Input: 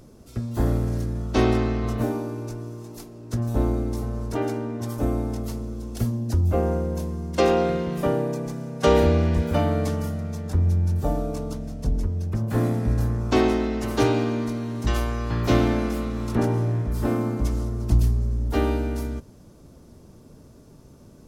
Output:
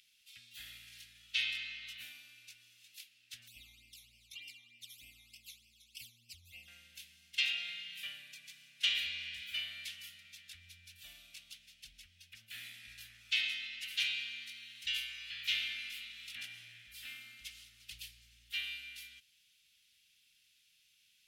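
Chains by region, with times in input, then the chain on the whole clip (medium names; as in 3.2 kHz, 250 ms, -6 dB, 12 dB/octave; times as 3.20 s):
3.48–6.68 s: Butterworth band-stop 1.6 kHz, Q 1.2 + phase shifter stages 12, 3.3 Hz, lowest notch 480–1300 Hz
whole clip: inverse Chebyshev high-pass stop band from 1.1 kHz, stop band 50 dB; resonant high shelf 4.1 kHz -13 dB, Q 1.5; trim +5.5 dB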